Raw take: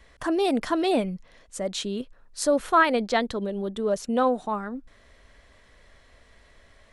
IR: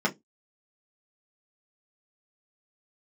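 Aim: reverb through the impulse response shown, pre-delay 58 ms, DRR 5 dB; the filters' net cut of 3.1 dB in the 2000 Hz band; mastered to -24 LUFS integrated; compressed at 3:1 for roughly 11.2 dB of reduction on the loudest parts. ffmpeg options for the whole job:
-filter_complex "[0:a]equalizer=f=2k:t=o:g=-4,acompressor=threshold=-32dB:ratio=3,asplit=2[a][b];[1:a]atrim=start_sample=2205,adelay=58[c];[b][c]afir=irnorm=-1:irlink=0,volume=-16.5dB[d];[a][d]amix=inputs=2:normalize=0,volume=8.5dB"

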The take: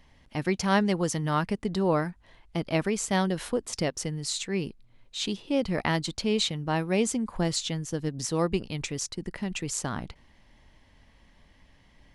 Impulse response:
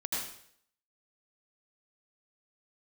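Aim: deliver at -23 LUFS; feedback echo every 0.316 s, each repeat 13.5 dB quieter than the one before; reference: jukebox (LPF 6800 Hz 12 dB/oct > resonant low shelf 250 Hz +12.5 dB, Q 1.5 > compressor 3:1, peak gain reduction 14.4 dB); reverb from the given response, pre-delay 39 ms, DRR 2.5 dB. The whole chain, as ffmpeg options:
-filter_complex "[0:a]aecho=1:1:316|632:0.211|0.0444,asplit=2[a][b];[1:a]atrim=start_sample=2205,adelay=39[c];[b][c]afir=irnorm=-1:irlink=0,volume=-7dB[d];[a][d]amix=inputs=2:normalize=0,lowpass=6.8k,lowshelf=f=250:t=q:w=1.5:g=12.5,acompressor=threshold=-27dB:ratio=3,volume=5dB"

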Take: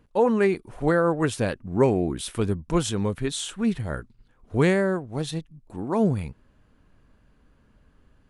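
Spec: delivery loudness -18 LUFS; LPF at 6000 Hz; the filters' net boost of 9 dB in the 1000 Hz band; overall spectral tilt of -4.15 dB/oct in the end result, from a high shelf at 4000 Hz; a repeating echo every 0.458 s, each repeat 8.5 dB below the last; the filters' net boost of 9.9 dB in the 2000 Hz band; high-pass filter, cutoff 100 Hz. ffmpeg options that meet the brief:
-af "highpass=100,lowpass=6k,equalizer=f=1k:t=o:g=8.5,equalizer=f=2k:t=o:g=8.5,highshelf=f=4k:g=4.5,aecho=1:1:458|916|1374|1832:0.376|0.143|0.0543|0.0206,volume=3.5dB"

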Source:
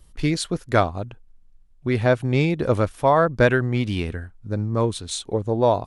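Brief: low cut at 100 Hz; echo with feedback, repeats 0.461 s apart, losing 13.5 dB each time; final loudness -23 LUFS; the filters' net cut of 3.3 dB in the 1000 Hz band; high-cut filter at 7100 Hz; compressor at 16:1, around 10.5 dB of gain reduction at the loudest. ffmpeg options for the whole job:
-af "highpass=100,lowpass=7.1k,equalizer=f=1k:t=o:g=-4.5,acompressor=threshold=-24dB:ratio=16,aecho=1:1:461|922:0.211|0.0444,volume=7.5dB"

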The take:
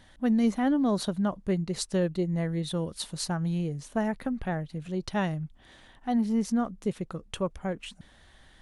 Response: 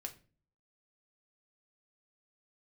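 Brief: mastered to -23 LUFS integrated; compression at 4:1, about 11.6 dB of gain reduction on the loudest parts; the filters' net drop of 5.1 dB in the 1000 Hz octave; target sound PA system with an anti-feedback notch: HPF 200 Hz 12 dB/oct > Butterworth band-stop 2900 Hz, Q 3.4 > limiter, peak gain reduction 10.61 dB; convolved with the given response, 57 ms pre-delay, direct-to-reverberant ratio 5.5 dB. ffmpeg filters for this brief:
-filter_complex "[0:a]equalizer=f=1k:t=o:g=-7.5,acompressor=threshold=-36dB:ratio=4,asplit=2[a][b];[1:a]atrim=start_sample=2205,adelay=57[c];[b][c]afir=irnorm=-1:irlink=0,volume=-2.5dB[d];[a][d]amix=inputs=2:normalize=0,highpass=200,asuperstop=centerf=2900:order=8:qfactor=3.4,volume=20.5dB,alimiter=limit=-13.5dB:level=0:latency=1"

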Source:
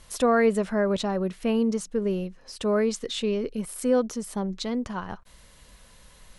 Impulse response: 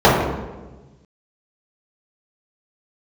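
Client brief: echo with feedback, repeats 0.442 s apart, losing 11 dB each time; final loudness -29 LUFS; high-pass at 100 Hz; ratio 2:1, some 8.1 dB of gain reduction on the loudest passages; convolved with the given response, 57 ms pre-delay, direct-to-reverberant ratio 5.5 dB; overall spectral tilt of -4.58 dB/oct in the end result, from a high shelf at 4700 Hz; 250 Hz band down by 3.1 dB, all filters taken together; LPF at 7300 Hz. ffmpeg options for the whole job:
-filter_complex "[0:a]highpass=100,lowpass=7.3k,equalizer=f=250:t=o:g=-3.5,highshelf=f=4.7k:g=4.5,acompressor=threshold=-33dB:ratio=2,aecho=1:1:442|884|1326:0.282|0.0789|0.0221,asplit=2[a][b];[1:a]atrim=start_sample=2205,adelay=57[c];[b][c]afir=irnorm=-1:irlink=0,volume=-35.5dB[d];[a][d]amix=inputs=2:normalize=0,volume=1.5dB"

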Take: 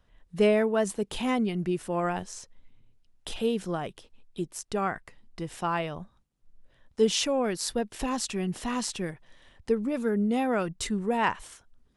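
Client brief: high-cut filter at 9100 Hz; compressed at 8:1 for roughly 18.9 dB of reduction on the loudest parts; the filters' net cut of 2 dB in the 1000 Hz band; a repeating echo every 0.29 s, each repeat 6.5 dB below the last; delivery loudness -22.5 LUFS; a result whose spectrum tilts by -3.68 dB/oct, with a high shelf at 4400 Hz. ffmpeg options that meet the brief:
-af "lowpass=9.1k,equalizer=f=1k:t=o:g=-3,highshelf=f=4.4k:g=7.5,acompressor=threshold=-38dB:ratio=8,aecho=1:1:290|580|870|1160|1450|1740:0.473|0.222|0.105|0.0491|0.0231|0.0109,volume=19dB"

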